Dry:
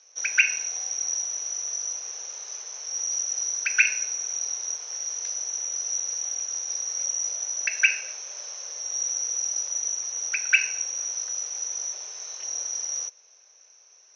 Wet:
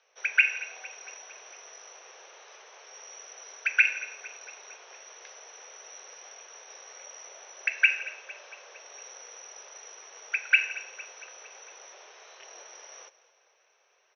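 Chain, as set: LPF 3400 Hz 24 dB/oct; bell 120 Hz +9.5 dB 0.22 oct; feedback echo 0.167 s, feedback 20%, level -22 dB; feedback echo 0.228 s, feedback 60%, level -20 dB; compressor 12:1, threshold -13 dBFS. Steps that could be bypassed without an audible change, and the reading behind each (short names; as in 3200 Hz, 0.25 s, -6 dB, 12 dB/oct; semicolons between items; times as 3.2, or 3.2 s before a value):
bell 120 Hz: input band starts at 360 Hz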